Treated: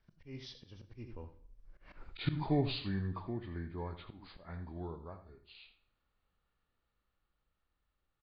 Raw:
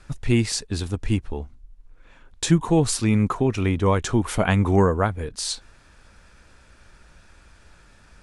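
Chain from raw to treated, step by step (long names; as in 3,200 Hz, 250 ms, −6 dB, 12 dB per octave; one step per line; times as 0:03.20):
hearing-aid frequency compression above 1,300 Hz 1.5 to 1
source passing by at 0:01.99, 40 m/s, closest 2.5 metres
single-tap delay 82 ms −12 dB
volume swells 165 ms
on a send at −12 dB: convolution reverb RT60 0.60 s, pre-delay 22 ms
on the sum: level +6 dB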